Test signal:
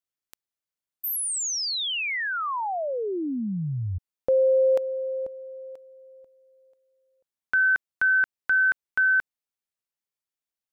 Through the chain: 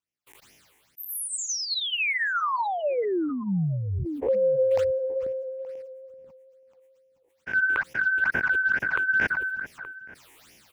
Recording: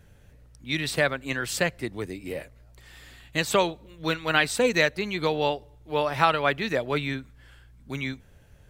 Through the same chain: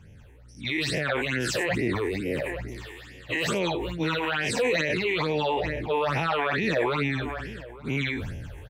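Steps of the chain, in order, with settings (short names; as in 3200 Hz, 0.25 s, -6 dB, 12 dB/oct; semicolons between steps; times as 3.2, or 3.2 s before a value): spectral dilation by 0.12 s; phaser stages 8, 2.3 Hz, lowest notch 170–1300 Hz; low shelf 470 Hz +4 dB; outdoor echo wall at 150 m, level -24 dB; limiter -16.5 dBFS; HPF 120 Hz 6 dB/oct; high shelf 9300 Hz -11.5 dB; sustainer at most 25 dB/s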